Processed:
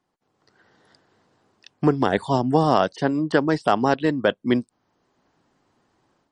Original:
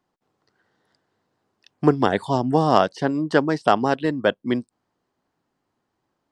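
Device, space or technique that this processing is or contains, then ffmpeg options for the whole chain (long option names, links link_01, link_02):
low-bitrate web radio: -filter_complex "[0:a]asettb=1/sr,asplit=3[link_01][link_02][link_03];[link_01]atrim=end=2.174[link_04];[link_02]atrim=start=2.17:end=3.94,asetpts=PTS-STARTPTS,afade=type=in:duration=0.004:curve=qsin,afade=type=out:start_time=1.766:duration=0.004:curve=qsin,highpass=frequency=45:width=0.5412,highpass=frequency=45:width=1.3066[link_05];[link_03]atrim=start=3.936[link_06];[link_04][link_05]acrossfade=duration=0.004:curve1=hsin:curve2=qsin[link_07];[link_07][link_06]acrossfade=duration=0.004:curve1=qsin:curve2=hsin,dynaudnorm=framelen=310:gausssize=3:maxgain=10dB,alimiter=limit=-5dB:level=0:latency=1:release=81" -ar 48000 -c:a libmp3lame -b:a 40k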